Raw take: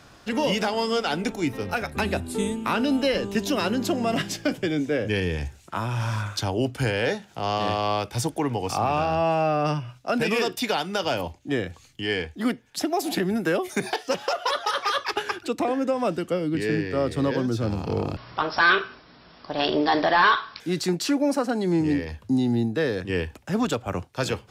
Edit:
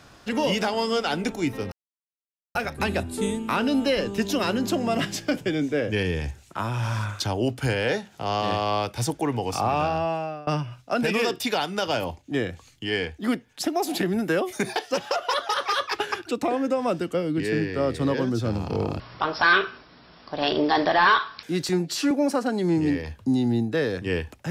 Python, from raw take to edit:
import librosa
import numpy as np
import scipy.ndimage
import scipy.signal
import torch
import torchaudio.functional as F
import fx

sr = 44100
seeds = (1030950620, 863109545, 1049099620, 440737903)

y = fx.edit(x, sr, fx.insert_silence(at_s=1.72, length_s=0.83),
    fx.fade_out_to(start_s=9.02, length_s=0.62, floor_db=-22.5),
    fx.stretch_span(start_s=20.86, length_s=0.28, factor=1.5), tone=tone)